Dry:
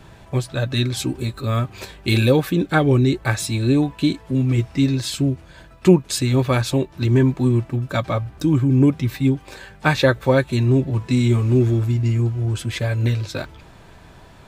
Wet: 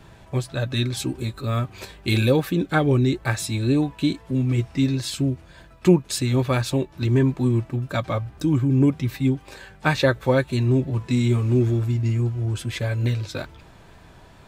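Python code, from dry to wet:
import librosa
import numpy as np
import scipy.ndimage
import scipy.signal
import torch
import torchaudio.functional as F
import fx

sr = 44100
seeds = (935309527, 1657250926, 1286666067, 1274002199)

y = fx.wow_flutter(x, sr, seeds[0], rate_hz=2.1, depth_cents=28.0)
y = F.gain(torch.from_numpy(y), -3.0).numpy()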